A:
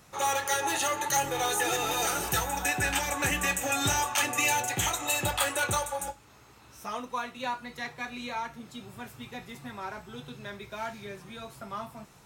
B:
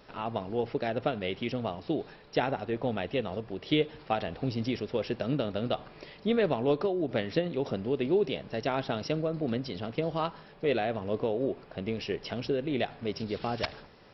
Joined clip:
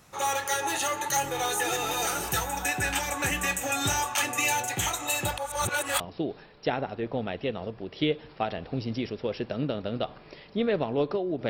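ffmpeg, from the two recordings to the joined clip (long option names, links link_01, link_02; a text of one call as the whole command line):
ffmpeg -i cue0.wav -i cue1.wav -filter_complex "[0:a]apad=whole_dur=11.49,atrim=end=11.49,asplit=2[link_01][link_02];[link_01]atrim=end=5.382[link_03];[link_02]atrim=start=5.378:end=6.002,asetpts=PTS-STARTPTS,areverse[link_04];[1:a]atrim=start=1.698:end=7.19[link_05];[link_03][link_04]acrossfade=duration=0.004:curve1=hsin:curve2=hsin[link_06];[link_06][link_05]acrossfade=duration=0.004:curve1=hsin:curve2=hsin" out.wav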